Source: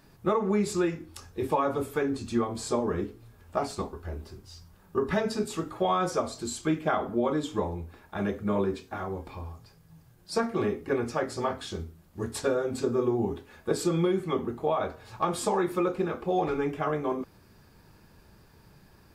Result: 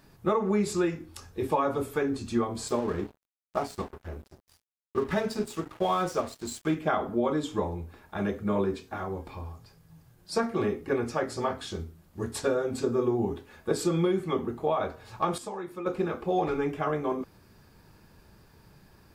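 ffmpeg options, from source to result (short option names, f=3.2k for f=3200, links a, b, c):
-filter_complex "[0:a]asettb=1/sr,asplit=3[a][b][c];[a]atrim=end=2.684[d];[b]atrim=start=2.68:end=6.75,asetpts=PTS-STARTPTS,afade=t=in:d=0.004:c=qsin,afade=t=out:st=4.066:d=0.004:c=qsin,aeval=exprs='sgn(val(0))*max(abs(val(0))-0.00668,0)':c=same[e];[c]atrim=start=6.746[f];[d][e]acrossfade=d=0.004:c1=hsin:c2=qsin[g];[g][f]acrossfade=d=0.004:c1=qsin:c2=hsin,asplit=3[h][i][j];[h]atrim=end=15.382[k];[i]atrim=start=15.378:end=15.862,asetpts=PTS-STARTPTS,volume=-10.5dB[l];[j]atrim=start=15.858[m];[k][l]acrossfade=d=0.004:c1=hsin:c2=hsin[n];[n][m]acrossfade=d=0.004:c1=hsin:c2=hsin"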